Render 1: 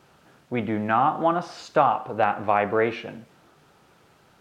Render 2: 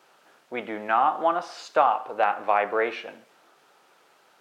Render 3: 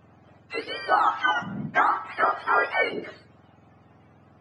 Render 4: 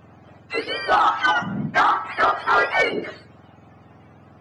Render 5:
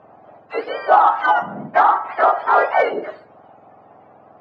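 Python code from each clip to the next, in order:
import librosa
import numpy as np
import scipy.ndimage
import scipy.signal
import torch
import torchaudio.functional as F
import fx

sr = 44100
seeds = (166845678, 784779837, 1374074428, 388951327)

y1 = scipy.signal.sosfilt(scipy.signal.butter(2, 460.0, 'highpass', fs=sr, output='sos'), x)
y2 = fx.octave_mirror(y1, sr, pivot_hz=1000.0)
y2 = fx.notch(y2, sr, hz=370.0, q=12.0)
y2 = F.gain(torch.from_numpy(y2), 3.0).numpy()
y3 = 10.0 ** (-17.0 / 20.0) * np.tanh(y2 / 10.0 ** (-17.0 / 20.0))
y3 = F.gain(torch.from_numpy(y3), 6.5).numpy()
y4 = fx.bandpass_q(y3, sr, hz=710.0, q=1.7)
y4 = F.gain(torch.from_numpy(y4), 8.5).numpy()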